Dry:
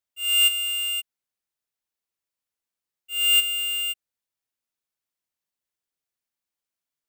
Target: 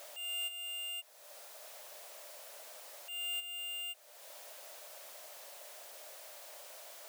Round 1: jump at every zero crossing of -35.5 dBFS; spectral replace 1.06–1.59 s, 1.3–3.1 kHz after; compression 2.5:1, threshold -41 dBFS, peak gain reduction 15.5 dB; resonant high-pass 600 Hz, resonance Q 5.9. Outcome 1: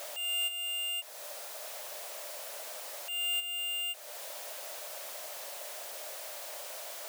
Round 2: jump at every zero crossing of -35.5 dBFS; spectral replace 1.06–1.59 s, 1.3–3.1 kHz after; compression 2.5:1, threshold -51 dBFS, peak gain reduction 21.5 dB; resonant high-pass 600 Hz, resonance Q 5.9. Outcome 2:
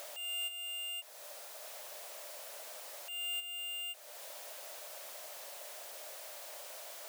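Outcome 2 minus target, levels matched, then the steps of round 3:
jump at every zero crossing: distortion +7 dB
jump at every zero crossing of -43.5 dBFS; spectral replace 1.06–1.59 s, 1.3–3.1 kHz after; compression 2.5:1, threshold -51 dBFS, peak gain reduction 21.5 dB; resonant high-pass 600 Hz, resonance Q 5.9

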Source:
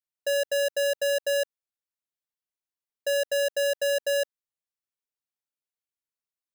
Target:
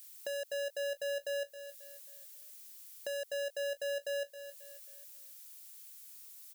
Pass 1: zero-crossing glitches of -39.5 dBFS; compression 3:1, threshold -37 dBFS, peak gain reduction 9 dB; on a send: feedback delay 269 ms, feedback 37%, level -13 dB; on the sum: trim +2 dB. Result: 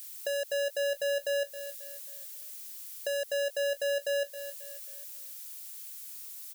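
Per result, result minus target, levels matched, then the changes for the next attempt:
compression: peak gain reduction -6 dB; zero-crossing glitches: distortion +8 dB
change: compression 3:1, threshold -46.5 dBFS, peak gain reduction 15 dB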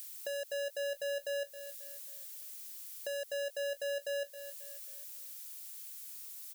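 zero-crossing glitches: distortion +8 dB
change: zero-crossing glitches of -48 dBFS

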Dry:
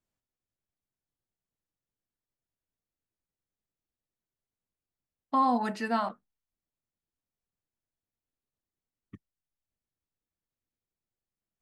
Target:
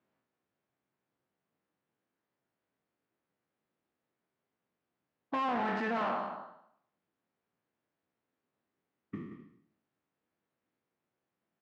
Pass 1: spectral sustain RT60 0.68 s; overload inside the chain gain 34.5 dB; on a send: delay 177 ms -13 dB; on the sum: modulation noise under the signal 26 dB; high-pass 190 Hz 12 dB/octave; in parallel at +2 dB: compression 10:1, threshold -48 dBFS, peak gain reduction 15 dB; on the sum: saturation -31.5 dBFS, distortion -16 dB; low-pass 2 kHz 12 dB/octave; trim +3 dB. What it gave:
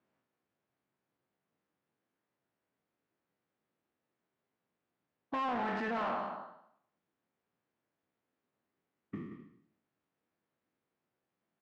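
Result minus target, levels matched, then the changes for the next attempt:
saturation: distortion +17 dB
change: saturation -21 dBFS, distortion -33 dB

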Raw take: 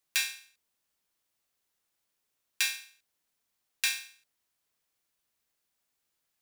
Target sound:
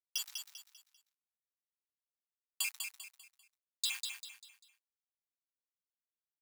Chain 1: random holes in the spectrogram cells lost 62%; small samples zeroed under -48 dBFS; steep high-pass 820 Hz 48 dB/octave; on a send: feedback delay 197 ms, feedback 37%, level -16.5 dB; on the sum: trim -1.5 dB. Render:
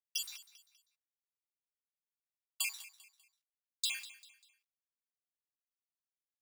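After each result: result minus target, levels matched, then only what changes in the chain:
echo-to-direct -10.5 dB; small samples zeroed: distortion -9 dB
change: feedback delay 197 ms, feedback 37%, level -6 dB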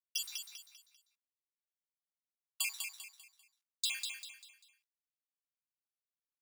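small samples zeroed: distortion -9 dB
change: small samples zeroed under -38.5 dBFS

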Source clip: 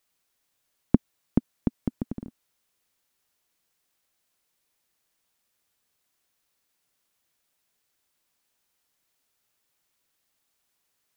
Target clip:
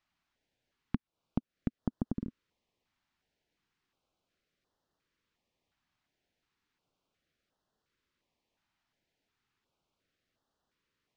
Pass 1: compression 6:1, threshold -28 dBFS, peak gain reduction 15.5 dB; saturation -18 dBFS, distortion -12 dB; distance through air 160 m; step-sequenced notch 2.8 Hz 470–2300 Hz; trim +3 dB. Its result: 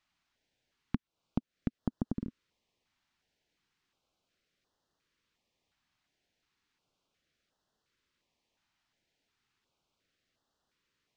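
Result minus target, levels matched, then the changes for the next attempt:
4 kHz band +2.5 dB
add after compression: treble shelf 2.3 kHz -5.5 dB

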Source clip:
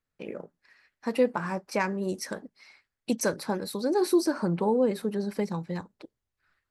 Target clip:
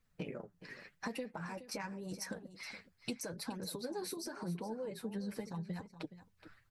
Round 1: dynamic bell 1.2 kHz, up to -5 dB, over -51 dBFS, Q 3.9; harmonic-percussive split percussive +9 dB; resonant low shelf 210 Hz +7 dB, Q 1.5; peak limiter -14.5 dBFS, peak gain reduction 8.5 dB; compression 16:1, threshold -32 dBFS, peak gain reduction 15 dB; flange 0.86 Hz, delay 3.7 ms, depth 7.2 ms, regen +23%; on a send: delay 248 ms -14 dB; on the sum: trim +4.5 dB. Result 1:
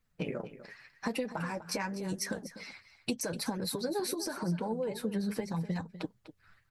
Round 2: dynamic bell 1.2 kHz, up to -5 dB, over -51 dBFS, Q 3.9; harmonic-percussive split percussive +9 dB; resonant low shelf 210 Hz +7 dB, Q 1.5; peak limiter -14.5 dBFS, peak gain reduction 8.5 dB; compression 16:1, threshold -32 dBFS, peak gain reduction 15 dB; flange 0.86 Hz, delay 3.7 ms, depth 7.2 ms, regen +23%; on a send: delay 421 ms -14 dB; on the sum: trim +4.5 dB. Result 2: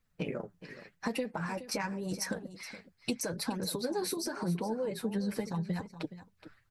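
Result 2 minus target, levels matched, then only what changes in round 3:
compression: peak gain reduction -7.5 dB
change: compression 16:1, threshold -40 dBFS, peak gain reduction 22.5 dB

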